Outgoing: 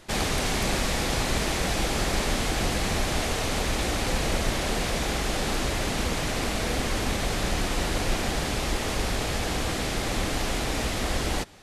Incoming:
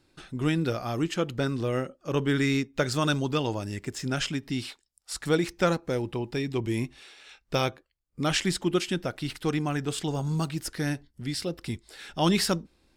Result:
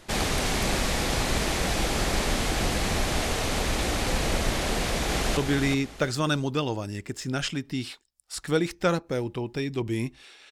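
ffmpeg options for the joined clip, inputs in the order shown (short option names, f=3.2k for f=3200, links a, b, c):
-filter_complex "[0:a]apad=whole_dur=10.51,atrim=end=10.51,atrim=end=5.372[a];[1:a]atrim=start=2.148:end=7.29[b];[a][b]acrossfade=d=0.004:c1=hsin:c2=hsin,asplit=2[c][d];[d]afade=t=in:st=4.72:d=0.01,afade=t=out:st=5.37:d=0.01,aecho=0:1:370|740|1110:0.530884|0.132721|0.0331803[e];[c][e]amix=inputs=2:normalize=0"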